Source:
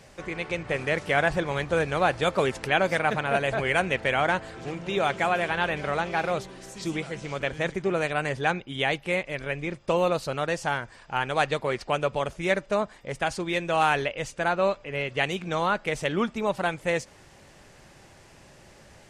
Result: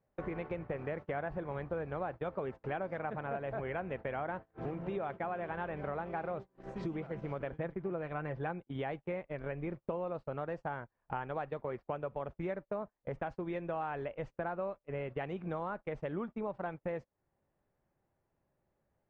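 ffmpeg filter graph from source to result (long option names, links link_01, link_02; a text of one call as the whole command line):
ffmpeg -i in.wav -filter_complex "[0:a]asettb=1/sr,asplit=3[link_01][link_02][link_03];[link_01]atrim=end=7.584[link_04];[link_02]atrim=start=7.58:end=8.64,asetpts=PTS-STARTPTS,afade=type=in:duration=0.004:curve=qsin,afade=type=out:start_time=1.056:duration=0.004:curve=qsin,lowpass=5300,aecho=1:1:5.9:0.37,atrim=end_sample=46746[link_05];[link_03]atrim=start=8.636[link_06];[link_04][link_05]acrossfade=duration=0.004:curve1=hsin:curve2=qsin[link_07];[link_07][link_06]acrossfade=duration=0.004:curve1=qsin:curve2=hsin,lowpass=1200,acompressor=threshold=-40dB:ratio=6,agate=range=-31dB:threshold=-46dB:ratio=16:detection=peak,volume=4dB" out.wav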